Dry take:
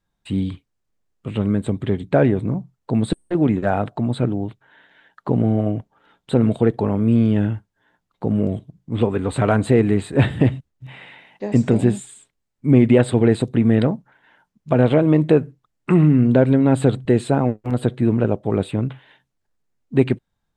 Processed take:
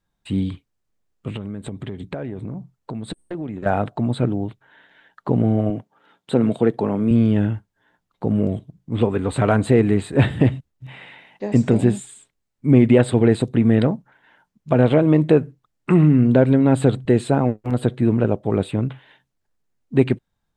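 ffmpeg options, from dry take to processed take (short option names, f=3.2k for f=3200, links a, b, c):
-filter_complex "[0:a]asettb=1/sr,asplit=3[a][b][c];[a]atrim=end=1.364[d];[b]atrim=start=1.36:end=3.66,asetpts=PTS-STARTPTS,afade=t=in:d=0.004:c=qsin,afade=t=out:st=2.296:d=0.004:c=qsin,acompressor=threshold=-26dB:ratio=6:attack=3.2:release=140:knee=1:detection=peak[e];[c]atrim=start=3.656[f];[d][e]acrossfade=d=0.004:c1=hsin:c2=qsin[g];[g][f]acrossfade=d=0.004:c1=qsin:c2=hsin,asettb=1/sr,asplit=3[h][i][j];[h]atrim=end=5.704[k];[i]atrim=start=5.7:end=7.11,asetpts=PTS-STARTPTS,afade=t=in:d=0.004:c=qsin,afade=t=out:st=1.406:d=0.004:c=qsin,highpass=150[l];[j]atrim=start=7.106[m];[k][l]acrossfade=d=0.004:c1=hsin:c2=qsin[n];[n][m]acrossfade=d=0.004:c1=qsin:c2=hsin"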